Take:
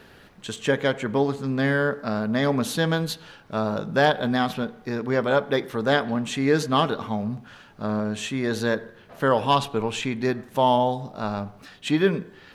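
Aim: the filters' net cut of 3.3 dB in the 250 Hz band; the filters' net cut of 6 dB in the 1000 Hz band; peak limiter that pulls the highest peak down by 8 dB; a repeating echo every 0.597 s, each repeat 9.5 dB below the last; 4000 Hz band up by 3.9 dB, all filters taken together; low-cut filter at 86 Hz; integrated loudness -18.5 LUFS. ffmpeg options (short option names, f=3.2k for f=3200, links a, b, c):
-af "highpass=86,equalizer=f=250:t=o:g=-3.5,equalizer=f=1k:t=o:g=-8,equalizer=f=4k:t=o:g=5.5,alimiter=limit=-15.5dB:level=0:latency=1,aecho=1:1:597|1194|1791|2388:0.335|0.111|0.0365|0.012,volume=9.5dB"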